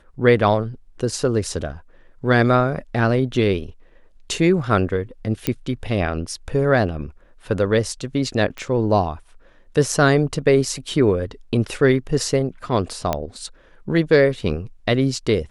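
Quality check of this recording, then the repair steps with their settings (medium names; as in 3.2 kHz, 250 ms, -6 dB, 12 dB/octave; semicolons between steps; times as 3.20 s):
5.47 s: pop -6 dBFS
8.58 s: pop -18 dBFS
13.13 s: pop -7 dBFS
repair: de-click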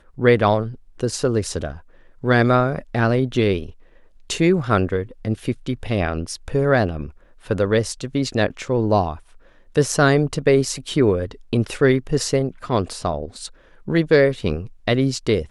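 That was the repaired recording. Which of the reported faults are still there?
nothing left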